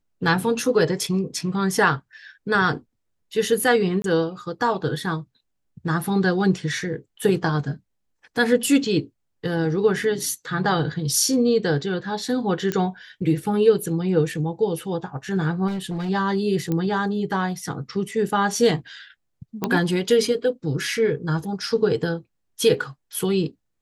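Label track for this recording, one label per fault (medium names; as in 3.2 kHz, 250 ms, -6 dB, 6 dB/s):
4.020000	4.040000	dropout 22 ms
12.720000	12.720000	pop -11 dBFS
15.670000	16.100000	clipped -23.5 dBFS
16.720000	16.720000	pop -13 dBFS
19.640000	19.640000	pop -9 dBFS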